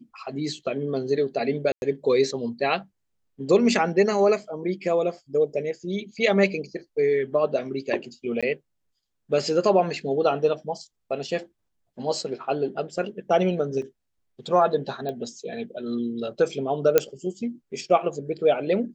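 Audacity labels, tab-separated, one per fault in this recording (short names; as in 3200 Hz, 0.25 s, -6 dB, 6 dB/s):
1.720000	1.820000	gap 0.101 s
8.410000	8.430000	gap 16 ms
13.820000	13.820000	gap 3.2 ms
15.090000	15.090000	pop -20 dBFS
16.980000	16.980000	pop -4 dBFS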